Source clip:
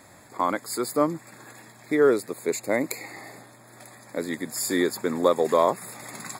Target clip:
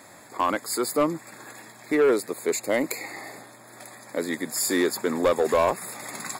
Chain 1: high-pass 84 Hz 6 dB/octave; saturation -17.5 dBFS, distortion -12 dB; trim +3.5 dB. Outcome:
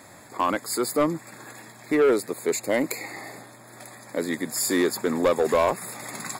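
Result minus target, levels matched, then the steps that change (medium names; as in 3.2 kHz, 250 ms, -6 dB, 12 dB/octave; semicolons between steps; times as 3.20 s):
125 Hz band +2.5 dB
add after high-pass: bass shelf 120 Hz -10 dB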